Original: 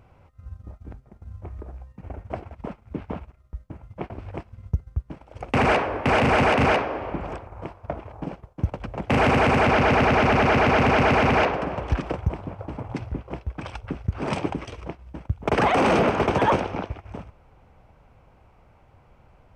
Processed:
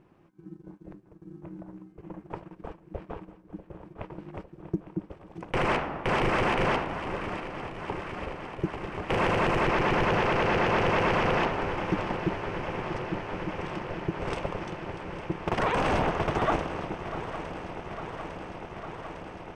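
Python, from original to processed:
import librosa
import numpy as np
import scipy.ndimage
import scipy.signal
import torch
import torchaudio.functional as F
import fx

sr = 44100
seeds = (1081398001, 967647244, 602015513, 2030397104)

y = fx.echo_swing(x, sr, ms=854, ratio=3, feedback_pct=79, wet_db=-13.5)
y = y * np.sin(2.0 * np.pi * 250.0 * np.arange(len(y)) / sr)
y = y * 10.0 ** (-3.5 / 20.0)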